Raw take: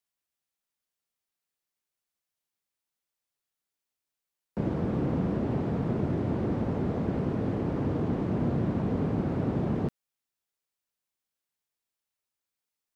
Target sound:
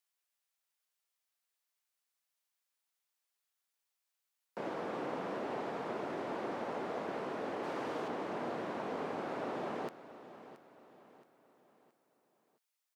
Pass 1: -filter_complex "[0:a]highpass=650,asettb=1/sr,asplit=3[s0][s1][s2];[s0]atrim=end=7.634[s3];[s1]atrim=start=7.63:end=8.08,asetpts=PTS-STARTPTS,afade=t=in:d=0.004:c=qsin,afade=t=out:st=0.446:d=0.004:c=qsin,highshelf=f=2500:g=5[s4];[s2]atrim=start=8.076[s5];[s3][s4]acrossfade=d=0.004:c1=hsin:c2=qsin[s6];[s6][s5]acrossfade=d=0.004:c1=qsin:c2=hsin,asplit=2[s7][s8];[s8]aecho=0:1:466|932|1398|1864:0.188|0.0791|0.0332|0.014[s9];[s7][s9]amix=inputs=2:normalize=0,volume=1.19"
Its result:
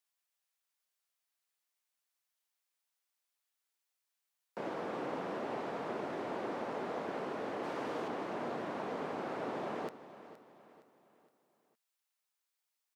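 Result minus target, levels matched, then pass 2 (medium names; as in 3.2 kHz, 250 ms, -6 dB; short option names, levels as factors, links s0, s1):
echo 207 ms early
-filter_complex "[0:a]highpass=650,asettb=1/sr,asplit=3[s0][s1][s2];[s0]atrim=end=7.634[s3];[s1]atrim=start=7.63:end=8.08,asetpts=PTS-STARTPTS,afade=t=in:d=0.004:c=qsin,afade=t=out:st=0.446:d=0.004:c=qsin,highshelf=f=2500:g=5[s4];[s2]atrim=start=8.076[s5];[s3][s4]acrossfade=d=0.004:c1=hsin:c2=qsin[s6];[s6][s5]acrossfade=d=0.004:c1=qsin:c2=hsin,asplit=2[s7][s8];[s8]aecho=0:1:673|1346|2019|2692:0.188|0.0791|0.0332|0.014[s9];[s7][s9]amix=inputs=2:normalize=0,volume=1.19"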